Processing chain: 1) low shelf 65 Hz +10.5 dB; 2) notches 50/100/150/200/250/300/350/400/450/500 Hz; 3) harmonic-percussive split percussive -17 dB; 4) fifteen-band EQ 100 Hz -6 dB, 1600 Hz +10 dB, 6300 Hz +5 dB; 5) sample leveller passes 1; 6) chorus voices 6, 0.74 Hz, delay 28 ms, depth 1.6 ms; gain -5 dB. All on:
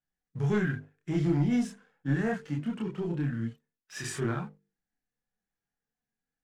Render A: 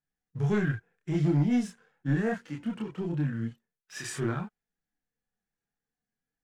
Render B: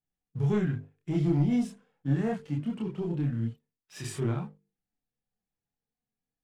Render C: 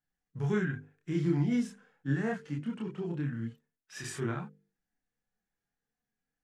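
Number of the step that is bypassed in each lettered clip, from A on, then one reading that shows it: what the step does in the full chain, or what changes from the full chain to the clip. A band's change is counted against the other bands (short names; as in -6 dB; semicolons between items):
2, momentary loudness spread change +1 LU; 4, 2 kHz band -7.0 dB; 5, loudness change -2.5 LU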